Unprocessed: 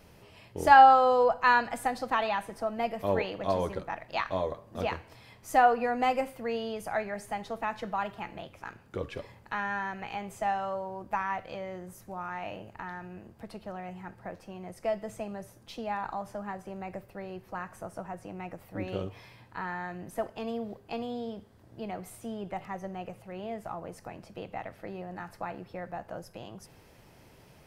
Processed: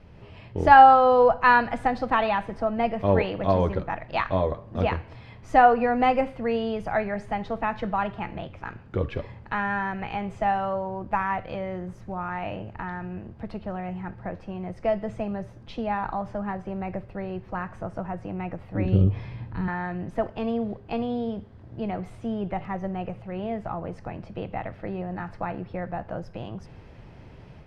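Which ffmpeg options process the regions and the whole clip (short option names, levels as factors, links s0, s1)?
-filter_complex "[0:a]asettb=1/sr,asplit=3[s0][s1][s2];[s0]atrim=end=18.854[s3];[s1]atrim=start=18.85:end=19.68,asetpts=PTS-STARTPTS,afade=t=in:d=0.004:c=qsin,afade=t=out:st=0.826:d=0.004:c=qsin,lowshelf=f=330:g=9.5,acrossover=split=390|3000[s4][s5][s6];[s5]acompressor=threshold=0.00501:ratio=4:attack=3.2:release=140:knee=2.83:detection=peak[s7];[s4][s7][s6]amix=inputs=3:normalize=0[s8];[s2]atrim=start=19.676[s9];[s3][s8]acrossfade=d=0.004:c1=hsin:c2=qsin[s10];[s10][s9]acrossfade=d=0.004:c1=qsin:c2=hsin,lowpass=3300,lowshelf=f=180:g=10.5,dynaudnorm=f=120:g=3:m=1.78"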